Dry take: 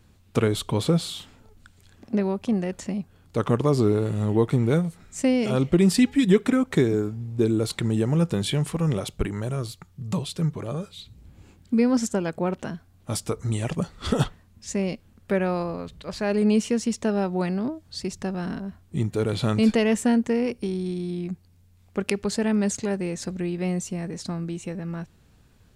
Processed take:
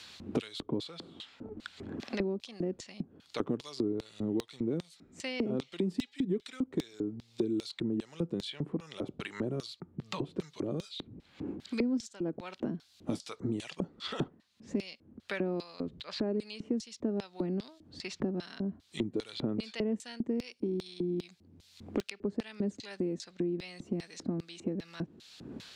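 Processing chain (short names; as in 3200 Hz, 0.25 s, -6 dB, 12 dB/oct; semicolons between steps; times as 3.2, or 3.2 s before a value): LFO band-pass square 2.5 Hz 300–4100 Hz; three-band squash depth 100%; gain -2 dB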